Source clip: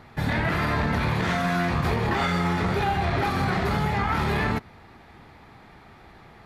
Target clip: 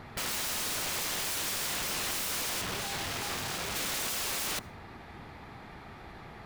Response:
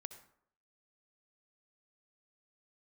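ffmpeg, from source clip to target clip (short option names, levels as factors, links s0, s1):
-filter_complex "[0:a]asettb=1/sr,asplit=3[s0][s1][s2];[s0]atrim=end=2.614[s3];[s1]atrim=start=2.61:end=3.76,asetpts=PTS-STARTPTS,afade=t=in:d=0.004:c=qsin,afade=t=out:st=1.146:d=0.004:c=qsin,acrusher=bits=2:mode=log:mix=0:aa=0.000001[s4];[s2]atrim=start=3.756[s5];[s3][s4]acrossfade=d=0.004:c1=hsin:c2=qsin[s6];[s6][s5]acrossfade=d=0.004:c1=qsin:c2=hsin,aeval=exprs='(mod(33.5*val(0)+1,2)-1)/33.5':c=same,asplit=2[s7][s8];[1:a]atrim=start_sample=2205[s9];[s8][s9]afir=irnorm=-1:irlink=0,volume=0.398[s10];[s7][s10]amix=inputs=2:normalize=0"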